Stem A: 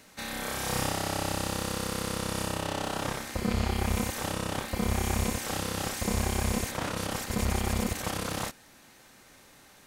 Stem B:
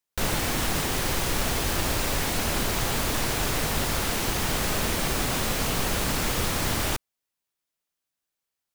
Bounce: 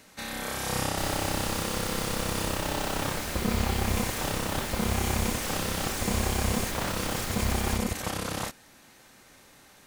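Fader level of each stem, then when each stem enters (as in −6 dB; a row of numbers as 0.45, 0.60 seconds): +0.5, −8.5 decibels; 0.00, 0.80 seconds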